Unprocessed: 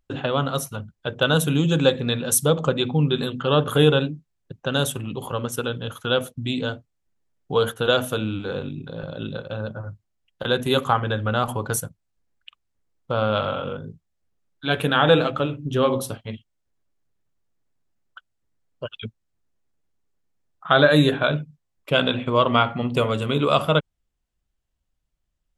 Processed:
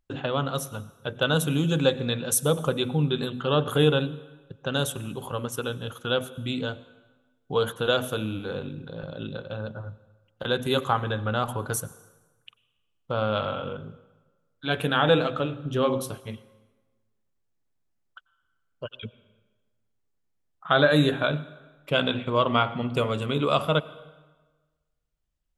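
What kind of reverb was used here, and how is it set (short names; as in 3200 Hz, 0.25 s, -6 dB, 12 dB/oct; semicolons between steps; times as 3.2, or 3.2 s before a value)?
plate-style reverb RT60 1.3 s, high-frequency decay 0.8×, pre-delay 80 ms, DRR 18 dB; gain -4 dB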